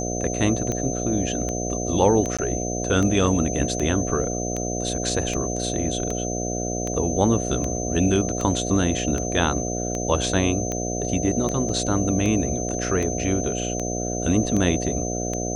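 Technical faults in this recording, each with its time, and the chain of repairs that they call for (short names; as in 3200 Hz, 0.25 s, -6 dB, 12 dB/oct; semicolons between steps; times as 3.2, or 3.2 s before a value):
buzz 60 Hz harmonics 12 -28 dBFS
tick 78 rpm -14 dBFS
tone 6200 Hz -30 dBFS
2.37–2.39 gap 16 ms
11.69 gap 2.7 ms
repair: de-click; notch 6200 Hz, Q 30; de-hum 60 Hz, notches 12; interpolate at 2.37, 16 ms; interpolate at 11.69, 2.7 ms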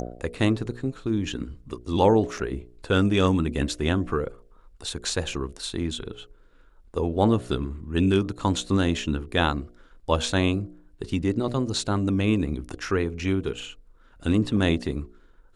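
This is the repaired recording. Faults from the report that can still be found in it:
none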